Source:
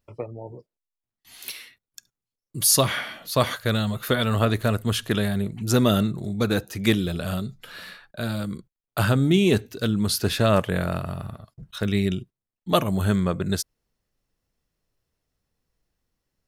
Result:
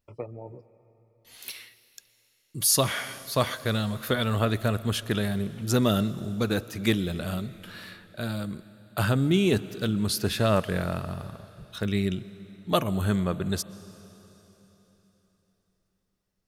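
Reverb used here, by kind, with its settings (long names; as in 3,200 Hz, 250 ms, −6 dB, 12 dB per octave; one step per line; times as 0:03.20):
comb and all-pass reverb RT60 3.8 s, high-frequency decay 1×, pre-delay 90 ms, DRR 17 dB
level −3.5 dB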